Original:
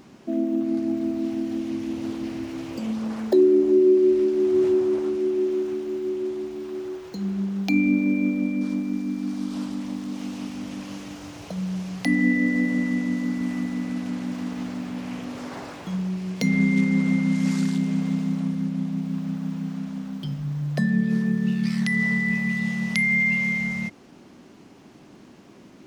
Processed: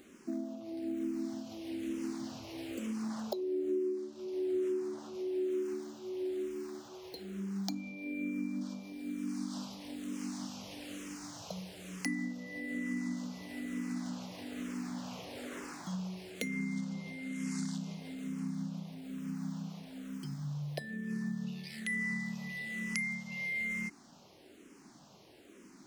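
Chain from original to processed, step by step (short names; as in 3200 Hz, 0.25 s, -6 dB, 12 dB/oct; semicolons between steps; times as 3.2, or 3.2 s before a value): compressor 6:1, threshold -25 dBFS, peak gain reduction 11.5 dB; tone controls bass -5 dB, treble +7 dB; endless phaser -1.1 Hz; gain -4.5 dB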